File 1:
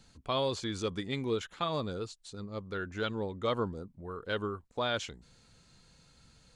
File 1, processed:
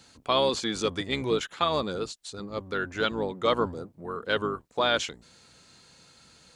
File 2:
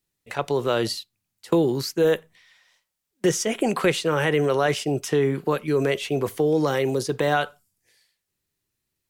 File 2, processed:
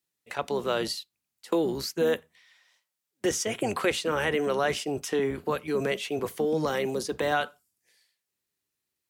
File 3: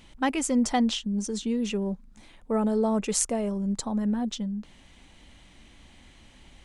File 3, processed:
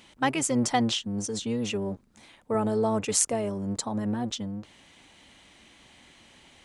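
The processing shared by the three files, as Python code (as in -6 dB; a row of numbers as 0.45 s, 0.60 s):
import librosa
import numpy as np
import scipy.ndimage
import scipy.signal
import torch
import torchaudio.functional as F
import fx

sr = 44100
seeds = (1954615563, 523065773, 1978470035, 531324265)

y = fx.octave_divider(x, sr, octaves=1, level_db=-2.0)
y = fx.highpass(y, sr, hz=370.0, slope=6)
y = y * 10.0 ** (-30 / 20.0) / np.sqrt(np.mean(np.square(y)))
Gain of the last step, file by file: +8.5 dB, -3.0 dB, +2.0 dB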